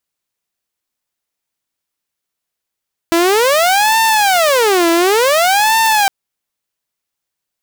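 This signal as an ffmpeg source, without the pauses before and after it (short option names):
-f lavfi -i "aevalsrc='0.447*(2*mod((616*t-282/(2*PI*0.56)*sin(2*PI*0.56*t)),1)-1)':d=2.96:s=44100"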